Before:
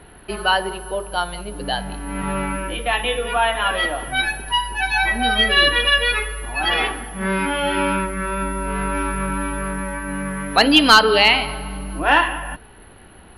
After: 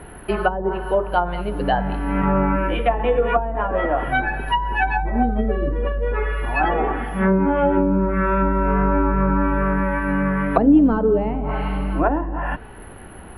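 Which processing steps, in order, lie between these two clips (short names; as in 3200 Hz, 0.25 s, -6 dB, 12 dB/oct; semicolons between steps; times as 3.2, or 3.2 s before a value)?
bell 4400 Hz -12 dB 1.3 oct; treble ducked by the level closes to 330 Hz, closed at -16 dBFS; gain +6.5 dB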